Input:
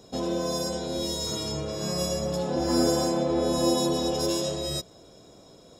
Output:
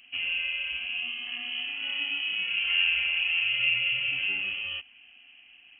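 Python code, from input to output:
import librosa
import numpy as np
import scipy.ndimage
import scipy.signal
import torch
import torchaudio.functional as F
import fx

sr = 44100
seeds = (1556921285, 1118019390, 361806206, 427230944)

y = fx.freq_invert(x, sr, carrier_hz=3100)
y = F.gain(torch.from_numpy(y), -2.0).numpy()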